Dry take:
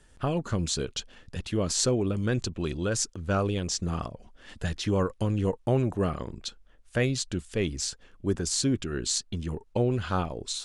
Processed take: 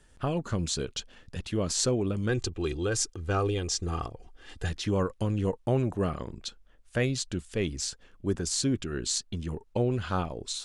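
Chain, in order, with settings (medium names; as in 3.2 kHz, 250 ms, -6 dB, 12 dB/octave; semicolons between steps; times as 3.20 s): 2.29–4.70 s: comb 2.5 ms, depth 60%; trim -1.5 dB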